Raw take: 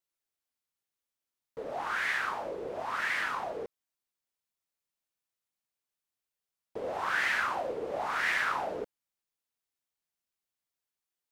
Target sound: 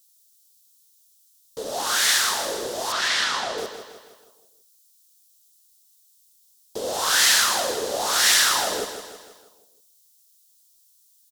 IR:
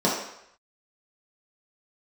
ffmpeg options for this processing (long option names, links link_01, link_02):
-filter_complex "[0:a]asettb=1/sr,asplit=3[link_01][link_02][link_03];[link_01]atrim=end=2.924[link_04];[link_02]atrim=start=2.92:end=3.58,asetpts=PTS-STARTPTS,afade=type=in:duration=0.004:curve=qsin,afade=type=out:start_time=0.656:duration=0.004:curve=qsin,lowpass=4500[link_05];[link_03]atrim=start=3.576[link_06];[link_04][link_05]acrossfade=duration=0.004:curve1=hsin:curve2=qsin[link_07];[link_07][link_06]acrossfade=duration=0.004:curve1=qsin:curve2=hsin,asplit=2[link_08][link_09];[1:a]atrim=start_sample=2205[link_10];[link_09][link_10]afir=irnorm=-1:irlink=0,volume=-32dB[link_11];[link_08][link_11]amix=inputs=2:normalize=0,aexciter=amount=14.2:drive=3.1:freq=3400,aecho=1:1:160|320|480|640|800|960:0.335|0.167|0.0837|0.0419|0.0209|0.0105,volume=5.5dB"